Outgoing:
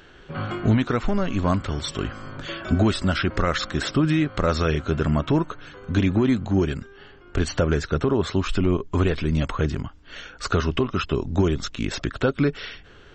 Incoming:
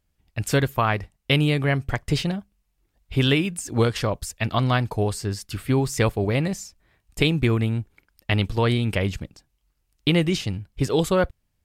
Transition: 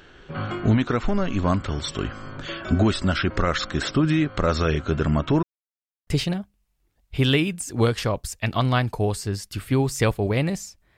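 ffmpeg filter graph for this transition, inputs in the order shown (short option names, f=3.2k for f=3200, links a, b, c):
-filter_complex "[0:a]apad=whole_dur=10.97,atrim=end=10.97,asplit=2[a][b];[a]atrim=end=5.43,asetpts=PTS-STARTPTS,afade=t=out:st=5.426:d=0.004:c=hsin[c];[b]atrim=start=5.43:end=6.07,asetpts=PTS-STARTPTS,volume=0[d];[1:a]atrim=start=2.05:end=6.95,asetpts=PTS-STARTPTS,afade=t=in:d=0.004:c=hsin[e];[c][d][e]concat=n=3:v=0:a=1"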